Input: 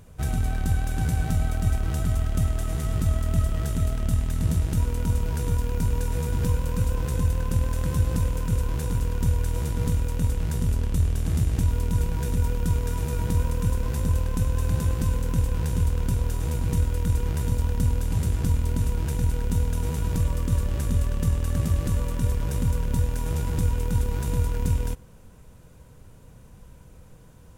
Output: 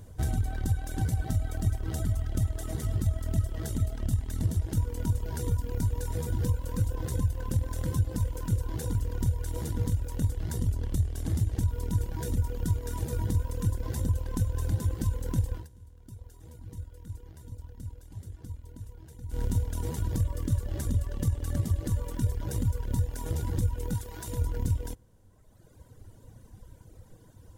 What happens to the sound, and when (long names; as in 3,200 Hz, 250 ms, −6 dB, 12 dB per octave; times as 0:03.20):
0:15.54–0:19.44: duck −17.5 dB, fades 0.15 s
0:23.95–0:24.41: low-shelf EQ 470 Hz −7 dB
whole clip: reverb reduction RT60 1.7 s; thirty-one-band graphic EQ 100 Hz +7 dB, 160 Hz −5 dB, 315 Hz +5 dB, 1,250 Hz −6 dB, 2,500 Hz −9 dB; downward compressor 2 to 1, threshold −26 dBFS